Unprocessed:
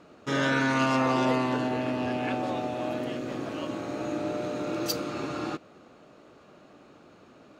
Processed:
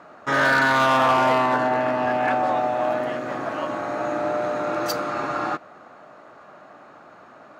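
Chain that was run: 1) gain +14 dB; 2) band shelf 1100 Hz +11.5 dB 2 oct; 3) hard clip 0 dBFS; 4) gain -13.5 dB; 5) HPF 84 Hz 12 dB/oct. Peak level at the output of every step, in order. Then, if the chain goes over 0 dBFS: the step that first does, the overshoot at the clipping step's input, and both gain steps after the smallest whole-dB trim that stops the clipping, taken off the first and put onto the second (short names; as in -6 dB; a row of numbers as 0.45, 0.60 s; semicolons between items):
+1.0, +9.5, 0.0, -13.5, -11.5 dBFS; step 1, 9.5 dB; step 1 +4 dB, step 4 -3.5 dB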